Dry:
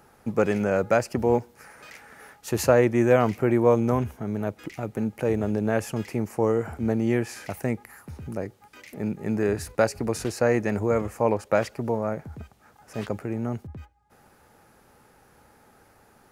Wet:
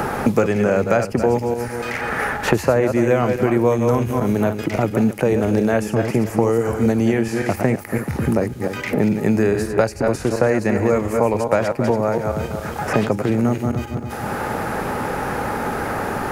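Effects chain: regenerating reverse delay 0.14 s, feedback 42%, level -7 dB; three-band squash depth 100%; gain +5.5 dB

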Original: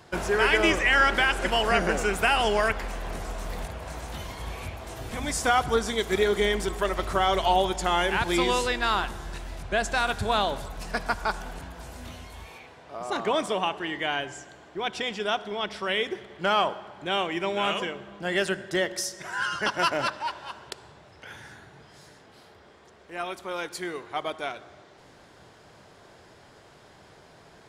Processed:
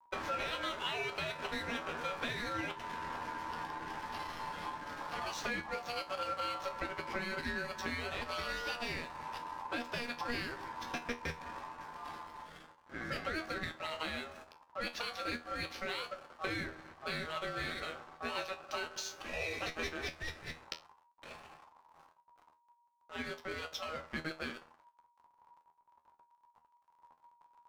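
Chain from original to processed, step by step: resonant high shelf 6100 Hz -11 dB, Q 3; compressor 6:1, threshold -30 dBFS, peak gain reduction 13.5 dB; backlash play -37 dBFS; ring modulator 950 Hz; resonator 80 Hz, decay 0.23 s, harmonics all, mix 80%; gain +4 dB

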